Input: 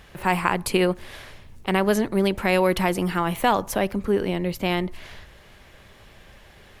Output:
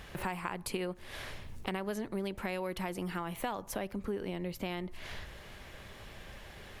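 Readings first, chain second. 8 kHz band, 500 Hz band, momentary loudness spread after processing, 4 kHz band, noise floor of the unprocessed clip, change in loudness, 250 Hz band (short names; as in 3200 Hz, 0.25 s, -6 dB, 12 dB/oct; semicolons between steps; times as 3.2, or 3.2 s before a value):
-11.5 dB, -15.0 dB, 13 LU, -13.0 dB, -50 dBFS, -15.0 dB, -14.0 dB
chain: compressor 4:1, threshold -36 dBFS, peak gain reduction 18 dB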